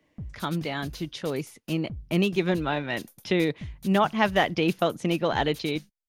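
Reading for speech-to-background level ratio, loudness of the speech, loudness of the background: 18.0 dB, −27.0 LKFS, −45.0 LKFS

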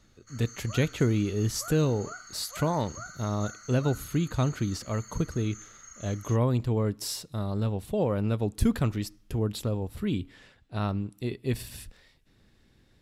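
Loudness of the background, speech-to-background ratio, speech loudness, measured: −45.0 LKFS, 15.5 dB, −29.5 LKFS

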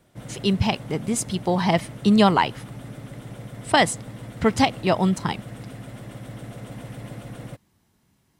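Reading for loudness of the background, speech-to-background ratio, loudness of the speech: −38.5 LKFS, 16.5 dB, −22.0 LKFS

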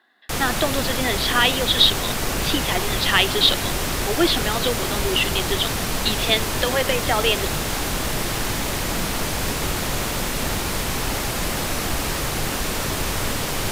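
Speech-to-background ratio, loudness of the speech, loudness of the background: 2.5 dB, −21.5 LKFS, −24.0 LKFS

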